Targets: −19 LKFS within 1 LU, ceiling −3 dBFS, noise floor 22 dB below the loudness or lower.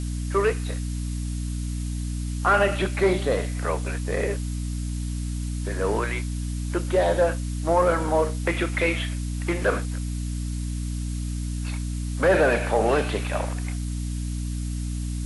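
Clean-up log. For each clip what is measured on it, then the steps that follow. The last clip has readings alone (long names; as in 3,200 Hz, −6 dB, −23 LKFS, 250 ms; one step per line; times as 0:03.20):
mains hum 60 Hz; hum harmonics up to 300 Hz; level of the hum −26 dBFS; background noise floor −29 dBFS; target noise floor −48 dBFS; integrated loudness −26.0 LKFS; sample peak −9.5 dBFS; target loudness −19.0 LKFS
→ mains-hum notches 60/120/180/240/300 Hz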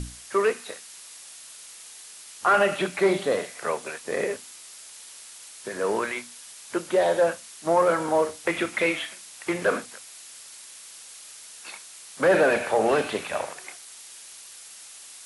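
mains hum none found; background noise floor −45 dBFS; target noise floor −47 dBFS
→ noise reduction from a noise print 6 dB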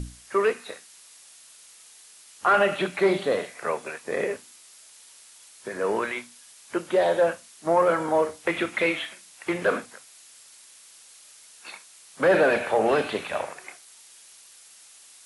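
background noise floor −51 dBFS; integrated loudness −25.0 LKFS; sample peak −10.5 dBFS; target loudness −19.0 LKFS
→ level +6 dB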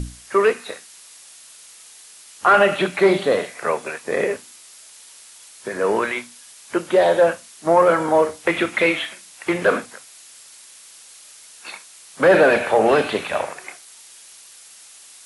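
integrated loudness −19.0 LKFS; sample peak −4.5 dBFS; background noise floor −45 dBFS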